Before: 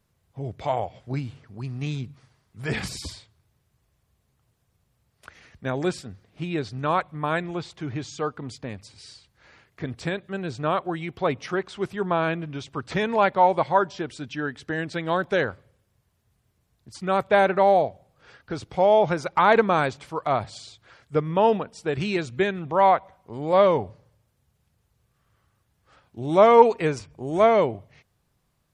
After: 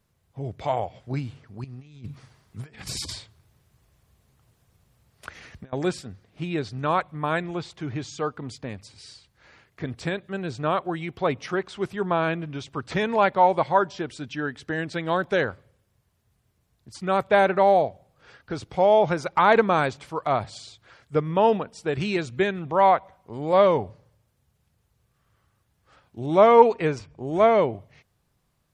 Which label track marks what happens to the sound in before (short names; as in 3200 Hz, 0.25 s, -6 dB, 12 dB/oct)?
1.640000	5.730000	negative-ratio compressor -37 dBFS, ratio -0.5
26.260000	27.730000	air absorption 68 m